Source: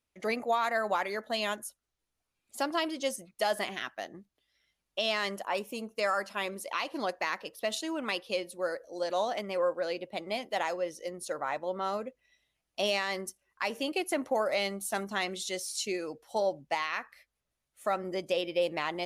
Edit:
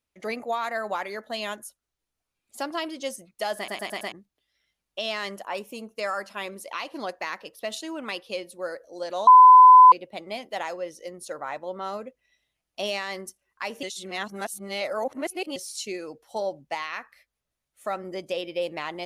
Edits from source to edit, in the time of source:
3.57 s: stutter in place 0.11 s, 5 plays
9.27–9.92 s: bleep 1.01 kHz -7 dBFS
13.83–15.56 s: reverse

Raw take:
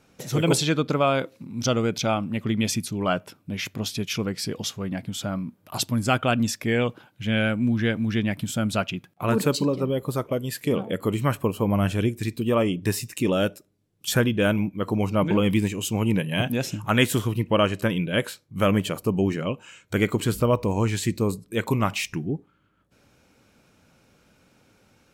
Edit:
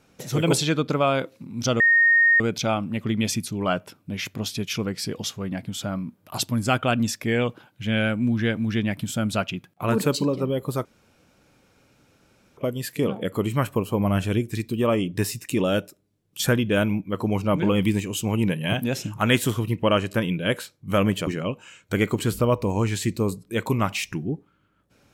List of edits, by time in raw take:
1.80 s: add tone 1.85 kHz -13.5 dBFS 0.60 s
10.25 s: insert room tone 1.72 s
18.95–19.28 s: delete

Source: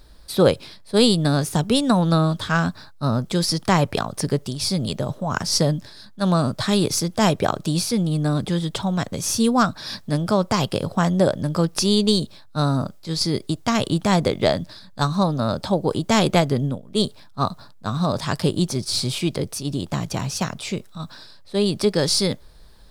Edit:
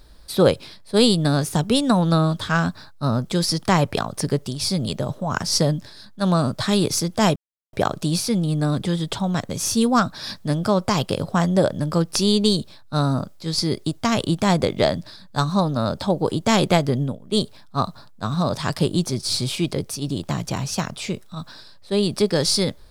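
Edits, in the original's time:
7.36 s: insert silence 0.37 s

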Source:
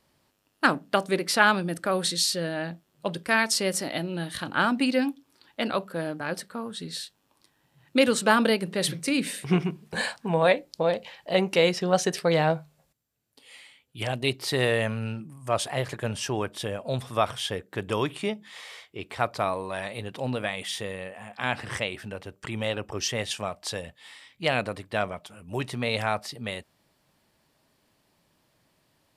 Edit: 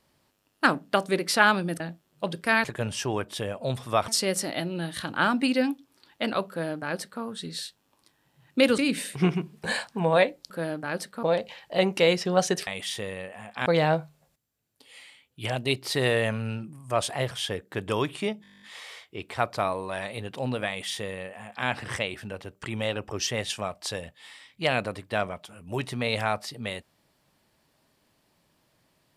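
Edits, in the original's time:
1.80–2.62 s: delete
5.87–6.60 s: copy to 10.79 s
8.16–9.07 s: delete
15.88–17.32 s: move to 3.46 s
18.43 s: stutter 0.02 s, 11 plays
20.49–21.48 s: copy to 12.23 s

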